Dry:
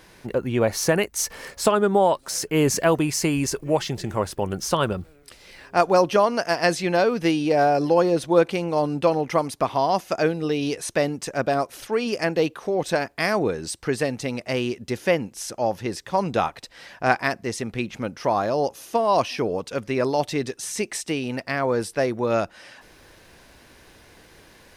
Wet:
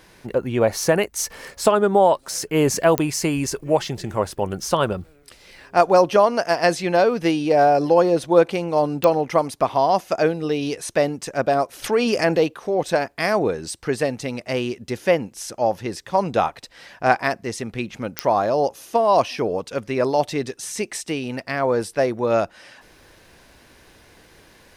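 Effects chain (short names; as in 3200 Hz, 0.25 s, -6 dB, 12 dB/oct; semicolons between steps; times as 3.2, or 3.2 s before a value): dynamic EQ 660 Hz, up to +4 dB, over -27 dBFS, Q 0.99; pops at 2.98/9.04/18.19, -3 dBFS; 11.84–12.44 fast leveller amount 50%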